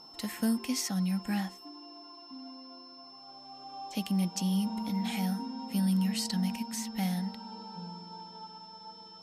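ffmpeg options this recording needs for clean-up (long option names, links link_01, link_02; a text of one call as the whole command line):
ffmpeg -i in.wav -af "bandreject=frequency=5300:width=30" out.wav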